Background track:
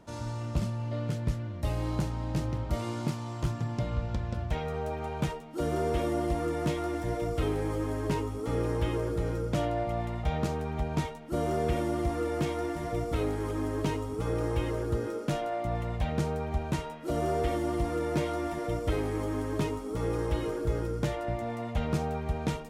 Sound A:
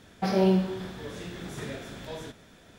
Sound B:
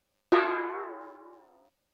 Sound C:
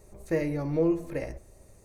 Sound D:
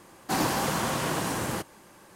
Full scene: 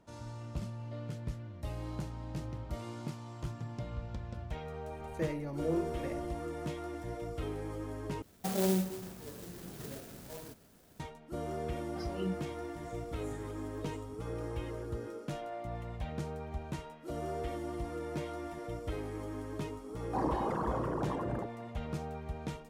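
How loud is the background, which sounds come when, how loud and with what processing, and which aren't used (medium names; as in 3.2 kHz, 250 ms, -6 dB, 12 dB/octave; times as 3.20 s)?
background track -9 dB
4.88 s: add C -8.5 dB
8.22 s: replace with A -7.5 dB + sampling jitter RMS 0.13 ms
11.73 s: add A -7.5 dB + spectral noise reduction 17 dB
19.84 s: add D -6.5 dB + resonances exaggerated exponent 3
not used: B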